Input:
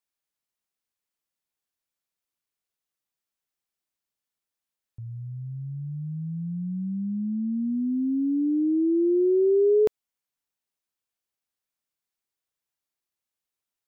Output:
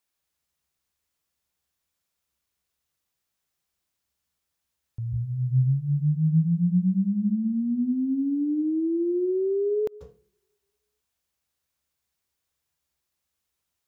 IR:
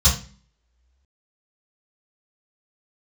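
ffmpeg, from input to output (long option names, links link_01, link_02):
-filter_complex "[0:a]acompressor=threshold=-31dB:ratio=6,asplit=2[link_01][link_02];[1:a]atrim=start_sample=2205,adelay=134[link_03];[link_02][link_03]afir=irnorm=-1:irlink=0,volume=-26.5dB[link_04];[link_01][link_04]amix=inputs=2:normalize=0,volume=6.5dB"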